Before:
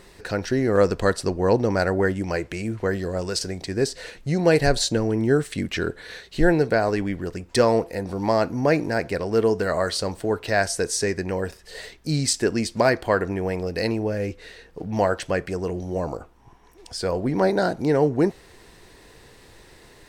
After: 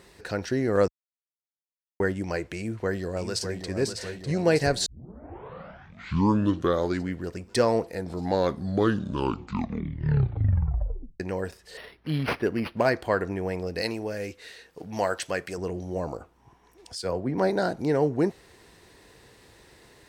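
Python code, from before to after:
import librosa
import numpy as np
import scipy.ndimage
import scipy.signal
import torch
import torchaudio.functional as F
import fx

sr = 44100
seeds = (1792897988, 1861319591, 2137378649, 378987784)

y = fx.echo_throw(x, sr, start_s=2.56, length_s=1.15, ms=600, feedback_pct=70, wet_db=-7.5)
y = fx.resample_linear(y, sr, factor=6, at=(11.77, 12.86))
y = fx.tilt_eq(y, sr, slope=2.0, at=(13.81, 15.58))
y = fx.band_widen(y, sr, depth_pct=100, at=(16.95, 17.38))
y = fx.edit(y, sr, fx.silence(start_s=0.88, length_s=1.12),
    fx.tape_start(start_s=4.86, length_s=2.39),
    fx.tape_stop(start_s=7.87, length_s=3.33), tone=tone)
y = scipy.signal.sosfilt(scipy.signal.butter(2, 49.0, 'highpass', fs=sr, output='sos'), y)
y = y * 10.0 ** (-4.0 / 20.0)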